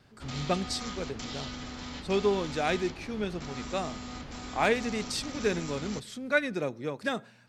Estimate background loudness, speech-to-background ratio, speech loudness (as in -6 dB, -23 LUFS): -40.0 LUFS, 8.0 dB, -32.0 LUFS